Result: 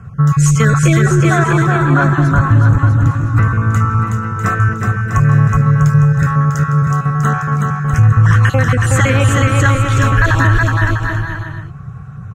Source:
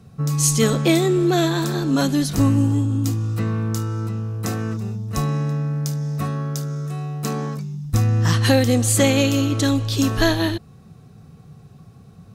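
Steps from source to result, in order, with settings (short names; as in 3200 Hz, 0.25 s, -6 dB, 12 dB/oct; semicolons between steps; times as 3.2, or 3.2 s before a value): random spectral dropouts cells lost 23%; EQ curve 130 Hz 0 dB, 260 Hz -15 dB, 800 Hz -8 dB, 1400 Hz +6 dB, 4600 Hz -24 dB, 6800 Hz -12 dB, 10000 Hz -22 dB; compressor 2.5:1, threshold -23 dBFS, peak gain reduction 5.5 dB; 1.02–3.14 high shelf 3000 Hz -11.5 dB; bouncing-ball echo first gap 0.37 s, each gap 0.75×, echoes 5; maximiser +16.5 dB; gain -1 dB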